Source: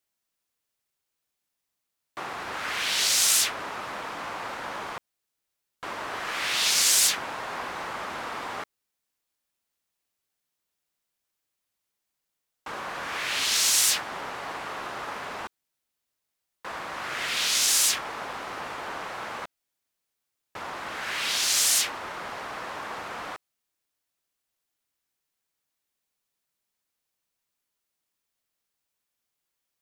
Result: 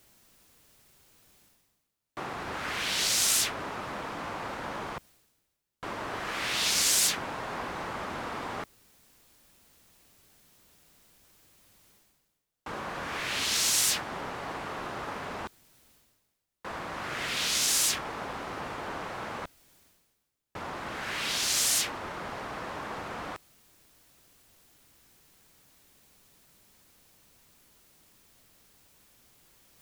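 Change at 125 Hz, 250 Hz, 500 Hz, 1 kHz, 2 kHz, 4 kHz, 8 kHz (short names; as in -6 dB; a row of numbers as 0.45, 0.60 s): +6.0, +3.5, 0.0, -2.5, -3.5, -4.0, -4.0 dB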